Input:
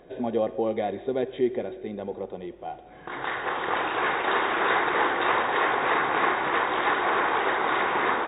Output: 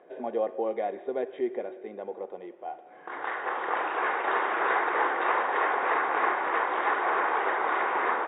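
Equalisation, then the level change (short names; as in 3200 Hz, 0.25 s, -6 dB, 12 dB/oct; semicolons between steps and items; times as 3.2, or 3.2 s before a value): HPF 430 Hz 12 dB/oct; LPF 2700 Hz 12 dB/oct; air absorption 270 m; 0.0 dB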